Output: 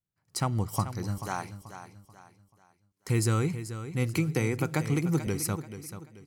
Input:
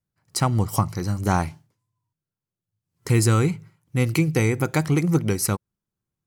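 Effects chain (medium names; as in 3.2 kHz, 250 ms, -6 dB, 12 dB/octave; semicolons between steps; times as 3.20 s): 1.18–3.08 s: high-pass 770 Hz 6 dB/octave; feedback delay 435 ms, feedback 36%, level -11.5 dB; 4.17–5.27 s: three bands compressed up and down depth 70%; trim -7.5 dB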